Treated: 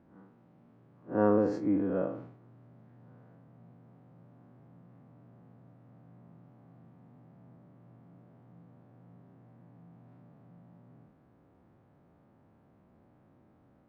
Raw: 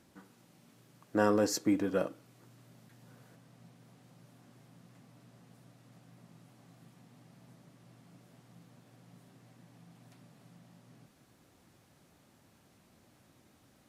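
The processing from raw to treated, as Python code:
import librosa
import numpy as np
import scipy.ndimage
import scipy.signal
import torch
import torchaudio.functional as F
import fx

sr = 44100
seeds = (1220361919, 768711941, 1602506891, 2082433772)

y = fx.spec_blur(x, sr, span_ms=106.0)
y = scipy.signal.sosfilt(scipy.signal.butter(2, 1100.0, 'lowpass', fs=sr, output='sos'), y)
y = fx.sustainer(y, sr, db_per_s=79.0)
y = F.gain(torch.from_numpy(y), 3.5).numpy()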